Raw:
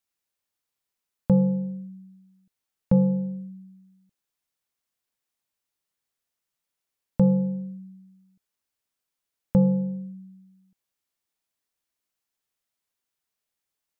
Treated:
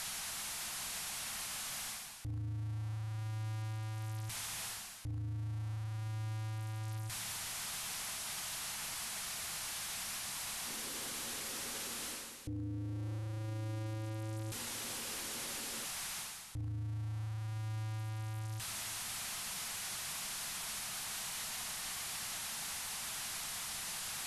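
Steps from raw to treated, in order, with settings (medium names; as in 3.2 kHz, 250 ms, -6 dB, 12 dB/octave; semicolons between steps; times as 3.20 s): jump at every zero crossing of -34.5 dBFS; dynamic bell 180 Hz, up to -6 dB, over -35 dBFS, Q 4.8; on a send at -22 dB: reverberation RT60 2.9 s, pre-delay 4 ms; on the sum: time-frequency box 6.16–9.14 s, 380–1000 Hz +12 dB; high-order bell 700 Hz -9.5 dB 1.2 oct; band-stop 440 Hz, Q 12; reverse; compression 8:1, threshold -33 dBFS, peak gain reduction 17 dB; reverse; speed mistake 78 rpm record played at 45 rpm; hum notches 50/100 Hz; peak limiter -38.5 dBFS, peak gain reduction 11 dB; trim +3.5 dB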